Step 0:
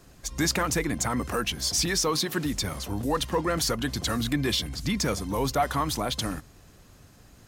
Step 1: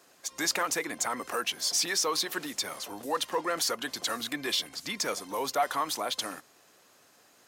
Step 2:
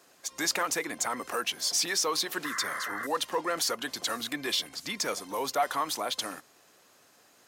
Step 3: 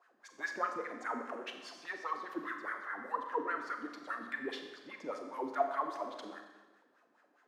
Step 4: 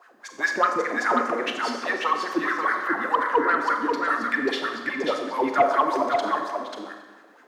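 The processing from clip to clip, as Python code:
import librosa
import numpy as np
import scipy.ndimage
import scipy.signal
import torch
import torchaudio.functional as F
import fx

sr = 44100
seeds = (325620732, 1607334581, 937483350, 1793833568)

y1 = scipy.signal.sosfilt(scipy.signal.butter(2, 460.0, 'highpass', fs=sr, output='sos'), x)
y1 = y1 * 10.0 ** (-1.5 / 20.0)
y2 = fx.spec_paint(y1, sr, seeds[0], shape='noise', start_s=2.44, length_s=0.63, low_hz=1000.0, high_hz=2100.0, level_db=-36.0)
y3 = fx.wah_lfo(y2, sr, hz=4.9, low_hz=250.0, high_hz=1700.0, q=4.3)
y3 = fx.rev_schroeder(y3, sr, rt60_s=1.2, comb_ms=30, drr_db=4.5)
y3 = y3 * 10.0 ** (1.0 / 20.0)
y4 = fx.fold_sine(y3, sr, drive_db=4, ceiling_db=-18.0)
y4 = y4 + 10.0 ** (-4.5 / 20.0) * np.pad(y4, (int(539 * sr / 1000.0), 0))[:len(y4)]
y4 = y4 * 10.0 ** (7.0 / 20.0)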